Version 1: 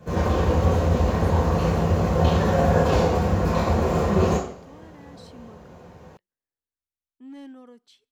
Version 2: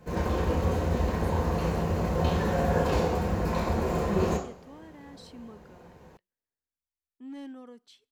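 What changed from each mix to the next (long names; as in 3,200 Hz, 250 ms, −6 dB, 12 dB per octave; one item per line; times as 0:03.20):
background: send −7.0 dB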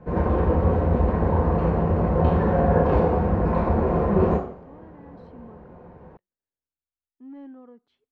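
background +6.5 dB
master: add low-pass filter 1,300 Hz 12 dB per octave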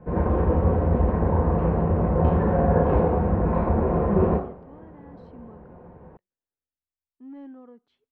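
background: add high-frequency loss of the air 370 metres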